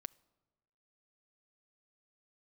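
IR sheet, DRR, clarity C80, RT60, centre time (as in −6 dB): 15.0 dB, 26.0 dB, 1.2 s, 1 ms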